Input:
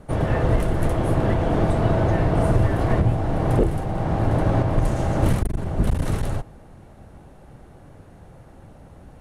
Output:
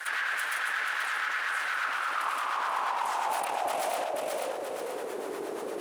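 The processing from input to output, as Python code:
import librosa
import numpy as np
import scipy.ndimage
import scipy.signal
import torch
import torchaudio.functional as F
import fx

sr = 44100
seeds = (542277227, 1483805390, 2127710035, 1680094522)

p1 = fx.rattle_buzz(x, sr, strikes_db=-26.0, level_db=-29.0)
p2 = scipy.signal.sosfilt(scipy.signal.butter(4, 53.0, 'highpass', fs=sr, output='sos'), p1)
p3 = fx.high_shelf(p2, sr, hz=3200.0, db=6.5)
p4 = p3 + 0.63 * np.pad(p3, (int(4.7 * sr / 1000.0), 0))[:len(p3)]
p5 = fx.rider(p4, sr, range_db=10, speed_s=0.5)
p6 = fx.stretch_vocoder(p5, sr, factor=0.63)
p7 = fx.harmonic_tremolo(p6, sr, hz=8.5, depth_pct=50, crossover_hz=450.0)
p8 = np.abs(p7)
p9 = p8 + fx.echo_feedback(p8, sr, ms=483, feedback_pct=21, wet_db=-7.5, dry=0)
p10 = fx.filter_sweep_highpass(p9, sr, from_hz=1600.0, to_hz=400.0, start_s=1.58, end_s=5.37, q=4.3)
p11 = fx.env_flatten(p10, sr, amount_pct=70)
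y = p11 * librosa.db_to_amplitude(-6.5)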